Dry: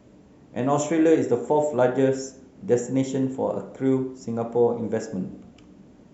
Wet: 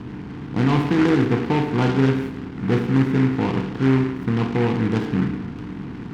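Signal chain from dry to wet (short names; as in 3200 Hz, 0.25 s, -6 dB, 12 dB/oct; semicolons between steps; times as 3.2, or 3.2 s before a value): per-bin compression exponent 0.6; LPF 1900 Hz 12 dB/oct; low shelf 170 Hz +11 dB; fixed phaser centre 1400 Hz, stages 4; noise-modulated delay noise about 1400 Hz, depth 0.09 ms; gain +3 dB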